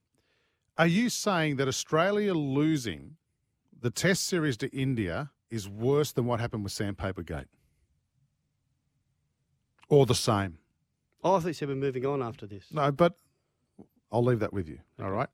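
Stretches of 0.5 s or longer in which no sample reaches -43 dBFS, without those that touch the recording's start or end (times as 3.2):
3.11–3.83
7.44–9.83
10.54–11.24
13.12–13.79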